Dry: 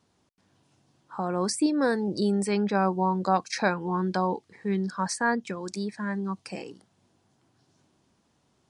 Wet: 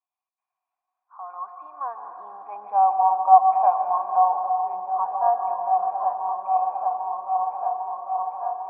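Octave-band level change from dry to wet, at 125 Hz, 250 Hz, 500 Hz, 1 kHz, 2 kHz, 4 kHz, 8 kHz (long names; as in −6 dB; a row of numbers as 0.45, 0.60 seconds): below −35 dB, below −30 dB, −1.0 dB, +12.5 dB, below −20 dB, below −40 dB, below −40 dB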